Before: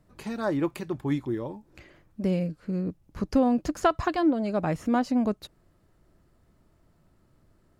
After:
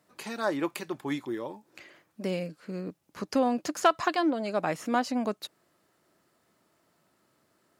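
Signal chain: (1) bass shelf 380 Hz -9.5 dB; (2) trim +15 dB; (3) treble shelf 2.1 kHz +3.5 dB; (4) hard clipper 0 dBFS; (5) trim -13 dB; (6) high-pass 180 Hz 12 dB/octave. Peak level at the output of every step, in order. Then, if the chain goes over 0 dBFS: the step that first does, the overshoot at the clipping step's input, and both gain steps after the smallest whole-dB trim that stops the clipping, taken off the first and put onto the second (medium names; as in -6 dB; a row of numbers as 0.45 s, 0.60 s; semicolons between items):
-12.5 dBFS, +2.5 dBFS, +3.5 dBFS, 0.0 dBFS, -13.0 dBFS, -10.0 dBFS; step 2, 3.5 dB; step 2 +11 dB, step 5 -9 dB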